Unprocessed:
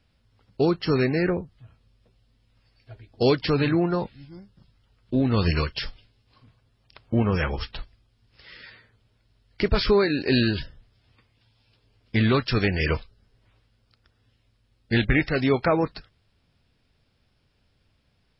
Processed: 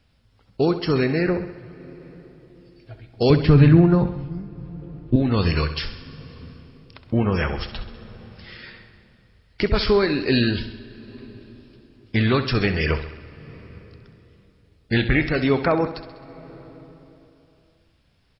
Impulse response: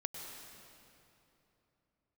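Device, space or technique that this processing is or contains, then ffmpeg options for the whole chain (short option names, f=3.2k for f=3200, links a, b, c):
ducked reverb: -filter_complex "[0:a]asettb=1/sr,asplit=3[a][b][c];[a]atrim=end=3.304[d];[b]atrim=start=3.3:end=5.16,asetpts=PTS-STARTPTS,afade=t=in:d=0.004:c=qsin,afade=t=out:st=1.856:d=0.004:c=qsin,bass=f=250:g=14,treble=f=4k:g=-11[e];[c]atrim=start=5.156[f];[d][e]acrossfade=d=0.004:c1=hsin:c2=qsin[g];[g][f]acrossfade=d=0.004:c1=qsin:c2=hsin,aecho=1:1:66|132|198|264|330|396|462:0.251|0.151|0.0904|0.0543|0.0326|0.0195|0.0117,asplit=3[h][i][j];[1:a]atrim=start_sample=2205[k];[i][k]afir=irnorm=-1:irlink=0[l];[j]apad=whole_len=831565[m];[l][m]sidechaincompress=threshold=-34dB:ratio=8:attack=45:release=692,volume=-6.5dB[n];[h][n]amix=inputs=2:normalize=0,volume=1dB"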